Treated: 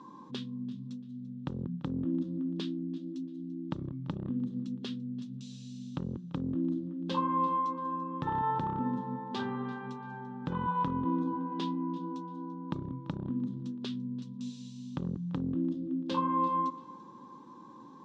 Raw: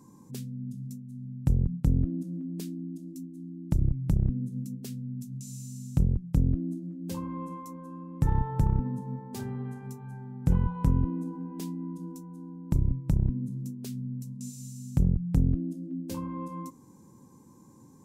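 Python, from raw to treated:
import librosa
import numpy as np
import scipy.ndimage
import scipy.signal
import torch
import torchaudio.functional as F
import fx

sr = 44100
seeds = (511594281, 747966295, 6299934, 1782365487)

p1 = fx.over_compress(x, sr, threshold_db=-27.0, ratio=-0.5)
p2 = x + (p1 * 10.0 ** (-0.5 / 20.0))
p3 = fx.cabinet(p2, sr, low_hz=360.0, low_slope=12, high_hz=3700.0, hz=(430.0, 680.0, 1100.0, 2200.0, 3500.0), db=(-7, -10, 6, -9, 7))
p4 = fx.echo_feedback(p3, sr, ms=340, feedback_pct=28, wet_db=-20)
y = p4 * 10.0 ** (2.5 / 20.0)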